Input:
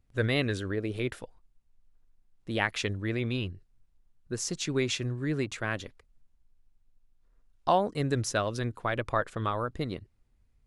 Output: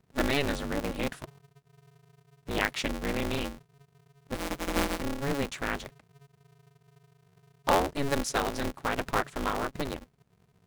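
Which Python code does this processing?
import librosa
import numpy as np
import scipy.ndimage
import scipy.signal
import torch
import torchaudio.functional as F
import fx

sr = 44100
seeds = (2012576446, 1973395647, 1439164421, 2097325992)

y = fx.sample_sort(x, sr, block=256, at=(4.34, 5.0), fade=0.02)
y = y * np.sign(np.sin(2.0 * np.pi * 140.0 * np.arange(len(y)) / sr))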